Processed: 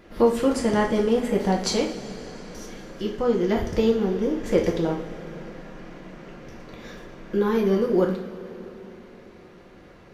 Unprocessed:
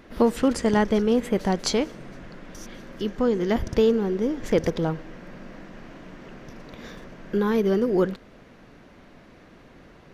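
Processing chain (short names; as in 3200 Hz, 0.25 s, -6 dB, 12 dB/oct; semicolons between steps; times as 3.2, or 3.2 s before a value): two-slope reverb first 0.44 s, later 4.3 s, from -18 dB, DRR -1 dB; gain -3 dB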